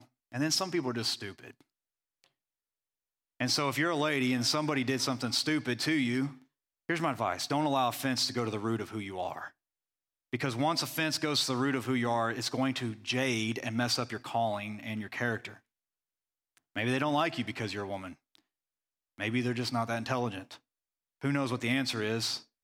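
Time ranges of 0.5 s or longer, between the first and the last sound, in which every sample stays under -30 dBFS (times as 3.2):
1.26–3.4
6.27–6.9
9.44–10.33
15.45–16.76
18.06–19.2
20.38–21.24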